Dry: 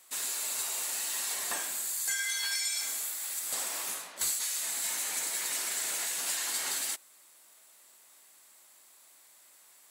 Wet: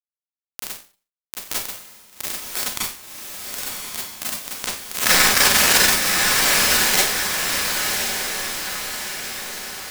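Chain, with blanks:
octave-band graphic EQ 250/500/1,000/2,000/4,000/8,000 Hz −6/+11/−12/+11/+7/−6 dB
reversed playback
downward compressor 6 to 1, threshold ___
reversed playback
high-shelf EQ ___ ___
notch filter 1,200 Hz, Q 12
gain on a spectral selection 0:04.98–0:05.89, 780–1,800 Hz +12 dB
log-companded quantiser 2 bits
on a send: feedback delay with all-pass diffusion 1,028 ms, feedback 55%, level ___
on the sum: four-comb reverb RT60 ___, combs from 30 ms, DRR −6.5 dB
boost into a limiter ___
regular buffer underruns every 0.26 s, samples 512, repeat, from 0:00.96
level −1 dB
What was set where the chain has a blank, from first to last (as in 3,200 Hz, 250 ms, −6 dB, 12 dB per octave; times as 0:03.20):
−47 dBFS, 8,500 Hz, −8.5 dB, −4 dB, 0.37 s, +22.5 dB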